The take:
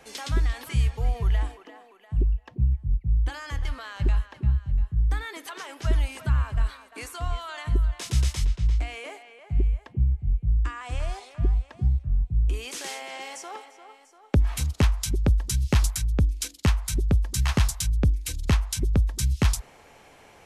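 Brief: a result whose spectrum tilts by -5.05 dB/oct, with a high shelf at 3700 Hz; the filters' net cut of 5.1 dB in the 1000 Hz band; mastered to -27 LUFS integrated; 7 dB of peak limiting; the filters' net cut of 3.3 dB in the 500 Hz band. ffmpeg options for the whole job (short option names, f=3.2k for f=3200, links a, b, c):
-af "equalizer=f=500:t=o:g=-3,equalizer=f=1k:t=o:g=-5.5,highshelf=f=3.7k:g=-3.5,volume=2dB,alimiter=limit=-16dB:level=0:latency=1"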